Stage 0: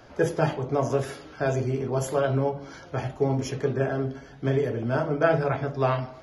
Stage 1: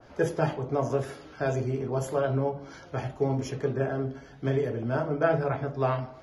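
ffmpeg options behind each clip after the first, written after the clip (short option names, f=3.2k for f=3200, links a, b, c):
-af "adynamicequalizer=threshold=0.00794:dfrequency=1800:dqfactor=0.7:tfrequency=1800:tqfactor=0.7:attack=5:release=100:ratio=0.375:range=2.5:mode=cutabove:tftype=highshelf,volume=-2.5dB"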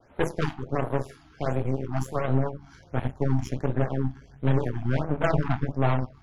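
-af "asubboost=boost=4.5:cutoff=150,aeval=exprs='0.316*(cos(1*acos(clip(val(0)/0.316,-1,1)))-cos(1*PI/2))+0.0224*(cos(7*acos(clip(val(0)/0.316,-1,1)))-cos(7*PI/2))+0.0447*(cos(8*acos(clip(val(0)/0.316,-1,1)))-cos(8*PI/2))':c=same,afftfilt=real='re*(1-between(b*sr/1024,450*pow(6100/450,0.5+0.5*sin(2*PI*1.4*pts/sr))/1.41,450*pow(6100/450,0.5+0.5*sin(2*PI*1.4*pts/sr))*1.41))':imag='im*(1-between(b*sr/1024,450*pow(6100/450,0.5+0.5*sin(2*PI*1.4*pts/sr))/1.41,450*pow(6100/450,0.5+0.5*sin(2*PI*1.4*pts/sr))*1.41))':win_size=1024:overlap=0.75"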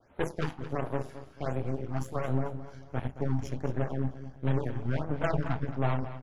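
-af "aecho=1:1:220|440|660|880:0.224|0.0806|0.029|0.0104,volume=-5.5dB"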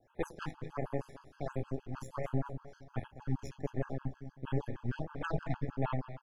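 -af "afftfilt=real='re*gt(sin(2*PI*6.4*pts/sr)*(1-2*mod(floor(b*sr/1024/840),2)),0)':imag='im*gt(sin(2*PI*6.4*pts/sr)*(1-2*mod(floor(b*sr/1024/840),2)),0)':win_size=1024:overlap=0.75,volume=-3dB"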